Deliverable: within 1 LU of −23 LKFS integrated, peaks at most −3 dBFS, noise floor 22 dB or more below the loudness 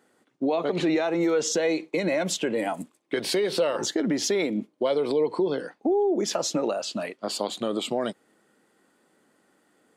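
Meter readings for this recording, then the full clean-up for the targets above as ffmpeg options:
integrated loudness −26.5 LKFS; sample peak −12.5 dBFS; target loudness −23.0 LKFS
→ -af "volume=3.5dB"

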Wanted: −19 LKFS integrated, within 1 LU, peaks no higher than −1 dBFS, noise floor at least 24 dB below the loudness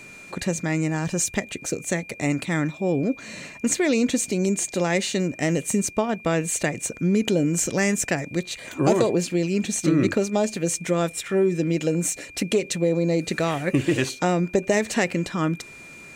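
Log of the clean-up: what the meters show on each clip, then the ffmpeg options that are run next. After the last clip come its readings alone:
interfering tone 2,400 Hz; level of the tone −42 dBFS; integrated loudness −23.5 LKFS; sample peak −8.5 dBFS; target loudness −19.0 LKFS
→ -af "bandreject=frequency=2400:width=30"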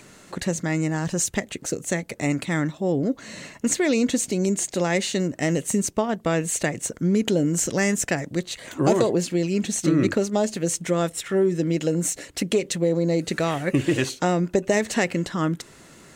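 interfering tone none found; integrated loudness −24.0 LKFS; sample peak −8.5 dBFS; target loudness −19.0 LKFS
→ -af "volume=5dB"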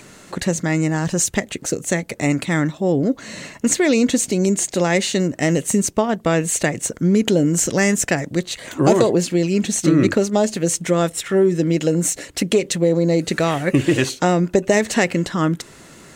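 integrated loudness −19.0 LKFS; sample peak −3.5 dBFS; background noise floor −44 dBFS

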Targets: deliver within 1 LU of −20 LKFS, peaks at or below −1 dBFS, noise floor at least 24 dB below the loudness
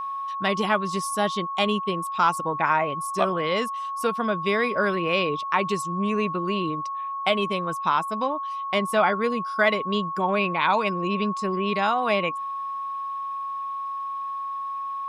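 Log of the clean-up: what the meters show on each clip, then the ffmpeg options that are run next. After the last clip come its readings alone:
interfering tone 1,100 Hz; level of the tone −28 dBFS; integrated loudness −25.0 LKFS; sample peak −7.0 dBFS; target loudness −20.0 LKFS
→ -af "bandreject=frequency=1100:width=30"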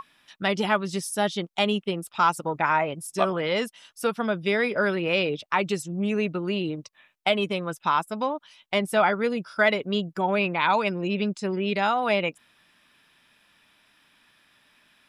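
interfering tone none found; integrated loudness −25.5 LKFS; sample peak −8.0 dBFS; target loudness −20.0 LKFS
→ -af "volume=5.5dB"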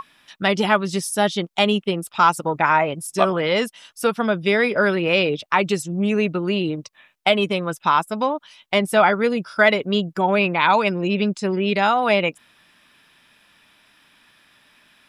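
integrated loudness −20.0 LKFS; sample peak −2.5 dBFS; background noise floor −59 dBFS

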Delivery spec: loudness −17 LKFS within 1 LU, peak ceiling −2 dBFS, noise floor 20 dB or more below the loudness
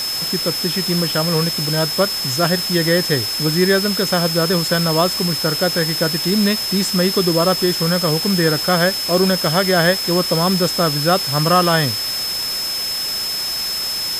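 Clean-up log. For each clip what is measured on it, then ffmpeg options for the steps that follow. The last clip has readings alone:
interfering tone 5,200 Hz; level of the tone −21 dBFS; background noise floor −23 dBFS; target noise floor −37 dBFS; integrated loudness −16.5 LKFS; sample peak −1.5 dBFS; target loudness −17.0 LKFS
→ -af "bandreject=frequency=5200:width=30"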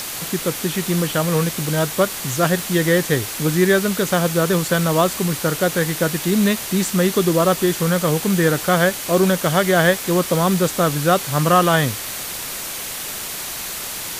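interfering tone none found; background noise floor −29 dBFS; target noise floor −39 dBFS
→ -af "afftdn=noise_reduction=10:noise_floor=-29"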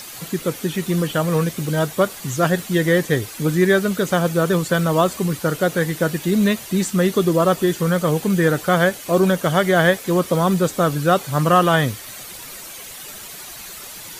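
background noise floor −36 dBFS; target noise floor −39 dBFS
→ -af "afftdn=noise_reduction=6:noise_floor=-36"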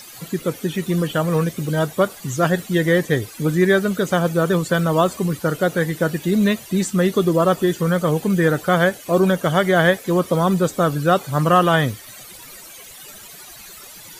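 background noise floor −40 dBFS; integrated loudness −19.0 LKFS; sample peak −2.5 dBFS; target loudness −17.0 LKFS
→ -af "volume=2dB,alimiter=limit=-2dB:level=0:latency=1"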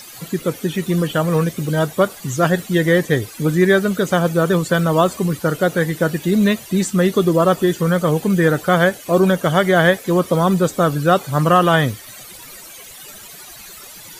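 integrated loudness −17.0 LKFS; sample peak −2.0 dBFS; background noise floor −38 dBFS

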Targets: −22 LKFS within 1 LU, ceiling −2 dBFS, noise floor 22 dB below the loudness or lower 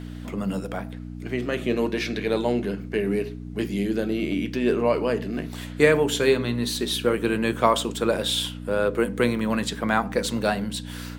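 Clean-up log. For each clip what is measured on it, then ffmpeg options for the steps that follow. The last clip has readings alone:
mains hum 60 Hz; hum harmonics up to 300 Hz; level of the hum −34 dBFS; integrated loudness −24.5 LKFS; sample peak −3.5 dBFS; target loudness −22.0 LKFS
→ -af "bandreject=frequency=60:width_type=h:width=4,bandreject=frequency=120:width_type=h:width=4,bandreject=frequency=180:width_type=h:width=4,bandreject=frequency=240:width_type=h:width=4,bandreject=frequency=300:width_type=h:width=4"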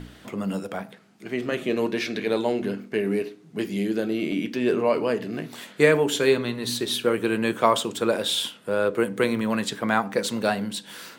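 mains hum none found; integrated loudness −25.0 LKFS; sample peak −4.0 dBFS; target loudness −22.0 LKFS
→ -af "volume=3dB,alimiter=limit=-2dB:level=0:latency=1"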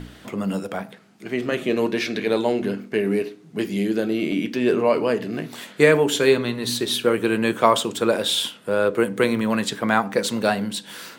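integrated loudness −22.0 LKFS; sample peak −2.0 dBFS; background noise floor −47 dBFS

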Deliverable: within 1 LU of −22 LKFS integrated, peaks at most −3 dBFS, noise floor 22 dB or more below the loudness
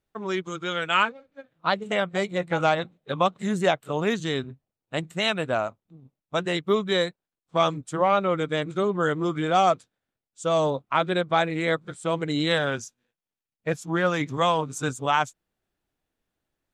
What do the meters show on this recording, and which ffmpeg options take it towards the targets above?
integrated loudness −25.5 LKFS; sample peak −7.5 dBFS; target loudness −22.0 LKFS
→ -af "volume=3.5dB"

